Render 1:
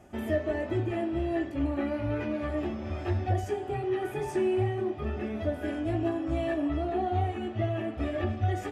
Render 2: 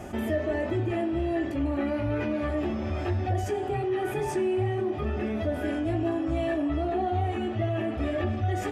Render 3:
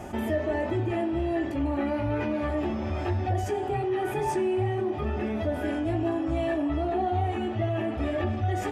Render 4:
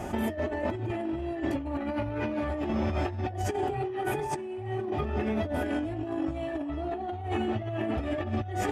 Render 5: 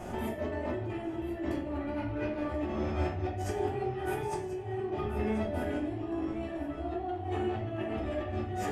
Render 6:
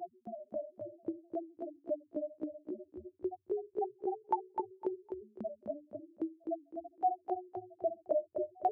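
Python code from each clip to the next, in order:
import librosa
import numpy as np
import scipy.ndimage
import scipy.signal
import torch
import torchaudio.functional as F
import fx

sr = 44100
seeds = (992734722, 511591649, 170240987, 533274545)

y1 = fx.env_flatten(x, sr, amount_pct=50)
y1 = y1 * 10.0 ** (-1.0 / 20.0)
y2 = fx.peak_eq(y1, sr, hz=890.0, db=6.0, octaves=0.28)
y3 = fx.over_compress(y2, sr, threshold_db=-30.0, ratio=-0.5)
y4 = y3 + 10.0 ** (-13.5 / 20.0) * np.pad(y3, (int(1034 * sr / 1000.0), 0))[:len(y3)]
y4 = fx.room_shoebox(y4, sr, seeds[0], volume_m3=81.0, walls='mixed', distance_m=0.91)
y4 = y4 * 10.0 ** (-7.5 / 20.0)
y5 = fx.spec_topn(y4, sr, count=1)
y5 = fx.filter_lfo_highpass(y5, sr, shape='saw_up', hz=3.7, low_hz=490.0, high_hz=6400.0, q=1.4)
y5 = fx.echo_feedback(y5, sr, ms=254, feedback_pct=27, wet_db=-6.0)
y5 = y5 * 10.0 ** (13.5 / 20.0)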